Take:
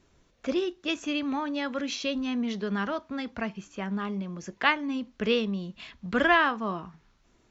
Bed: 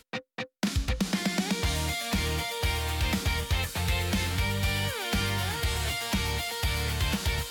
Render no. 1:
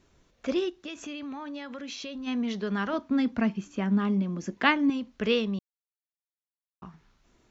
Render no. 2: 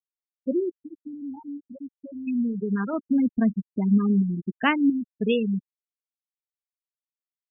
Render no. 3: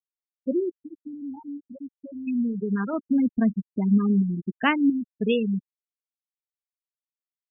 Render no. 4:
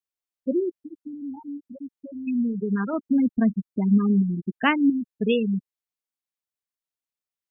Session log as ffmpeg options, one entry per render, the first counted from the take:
-filter_complex "[0:a]asplit=3[a][b][c];[a]afade=t=out:st=0.69:d=0.02[d];[b]acompressor=threshold=-35dB:ratio=6:attack=3.2:release=140:knee=1:detection=peak,afade=t=in:st=0.69:d=0.02,afade=t=out:st=2.26:d=0.02[e];[c]afade=t=in:st=2.26:d=0.02[f];[d][e][f]amix=inputs=3:normalize=0,asettb=1/sr,asplit=3[g][h][i];[g]atrim=end=2.934[j];[h]atrim=start=2.93:end=4.9,asetpts=PTS-STARTPTS,afade=t=in:d=0.004:c=qsin,afade=t=out:st=1.966:d=0.004:c=qsin,equalizer=f=250:w=1.5:g=10.5[k];[i]atrim=start=4.896[l];[j][k]acrossfade=d=0.004:c1=hsin:c2=qsin[m];[m][l]acrossfade=d=0.004:c1=qsin:c2=hsin,asplit=3[n][o][p];[n]atrim=end=5.59,asetpts=PTS-STARTPTS,afade=t=out:st=5.586:d=0.004:c=hsin[q];[o]atrim=start=5.59:end=6.82,asetpts=PTS-STARTPTS,volume=0[r];[p]atrim=start=6.82,asetpts=PTS-STARTPTS,afade=t=in:d=0.004:c=hsin[s];[q][r][s]concat=n=3:v=0:a=1"
-af "afftfilt=real='re*gte(hypot(re,im),0.1)':imag='im*gte(hypot(re,im),0.1)':win_size=1024:overlap=0.75,lowshelf=f=260:g=8.5"
-af anull
-af "volume=1dB"

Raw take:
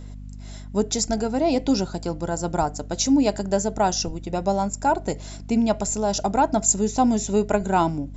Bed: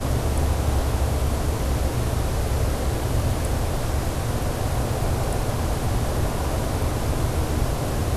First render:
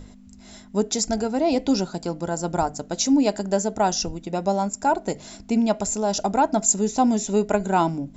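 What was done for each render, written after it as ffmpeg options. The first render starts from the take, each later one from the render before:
-af "bandreject=f=50:t=h:w=6,bandreject=f=100:t=h:w=6,bandreject=f=150:t=h:w=6"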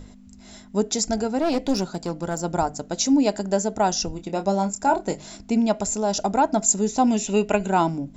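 -filter_complex "[0:a]asettb=1/sr,asplit=3[a][b][c];[a]atrim=end=1.384[d];[b]atrim=start=1.38:end=2.42,asetpts=PTS-STARTPTS,afade=t=in:d=0.004:c=qsin,afade=t=out:st=1.036:d=0.004:c=qsin,aeval=exprs='clip(val(0),-1,0.0596)':c=same[e];[c]atrim=start=2.416[f];[d][e]acrossfade=d=0.004:c1=hsin:c2=qsin[g];[g][f]acrossfade=d=0.004:c1=qsin:c2=hsin,asettb=1/sr,asplit=3[h][i][j];[h]atrim=end=4.144[k];[i]atrim=start=4.14:end=5.38,asetpts=PTS-STARTPTS,afade=t=in:d=0.004:c=qsin,afade=t=out:st=1.236:d=0.004:c=qsin,asplit=2[l][m];[m]adelay=26,volume=-8.5dB[n];[l][n]amix=inputs=2:normalize=0,atrim=end_sample=54684[o];[j]atrim=start=5.376[p];[k][o]acrossfade=d=0.004:c1=hsin:c2=qsin[q];[q][p]acrossfade=d=0.004:c1=qsin:c2=hsin,asettb=1/sr,asplit=3[r][s][t];[r]atrim=end=7.074[u];[s]atrim=start=7.07:end=7.7,asetpts=PTS-STARTPTS,afade=t=in:d=0.004:c=qsin,afade=t=out:st=0.626:d=0.004:c=qsin,equalizer=f=2.7k:t=o:w=0.37:g=14[v];[t]atrim=start=7.696[w];[u][v]acrossfade=d=0.004:c1=hsin:c2=qsin[x];[x][w]acrossfade=d=0.004:c1=qsin:c2=hsin"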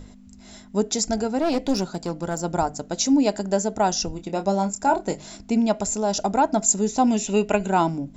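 -af anull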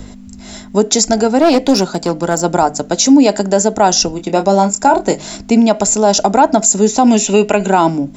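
-filter_complex "[0:a]acrossover=split=190|680|2400[a][b][c][d];[a]acompressor=threshold=-44dB:ratio=4[e];[e][b][c][d]amix=inputs=4:normalize=0,alimiter=level_in=13dB:limit=-1dB:release=50:level=0:latency=1"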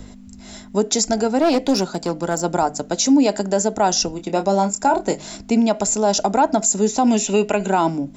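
-af "volume=-6.5dB"

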